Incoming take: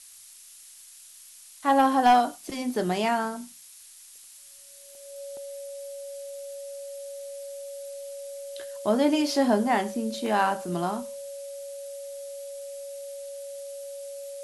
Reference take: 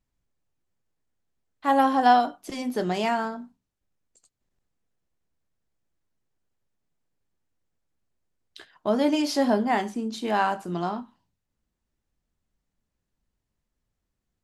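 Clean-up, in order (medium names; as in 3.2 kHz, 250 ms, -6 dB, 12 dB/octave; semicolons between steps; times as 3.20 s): clip repair -11.5 dBFS; band-stop 560 Hz, Q 30; interpolate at 0.63/4.95/5.37/10.26 s, 1.7 ms; noise print and reduce 30 dB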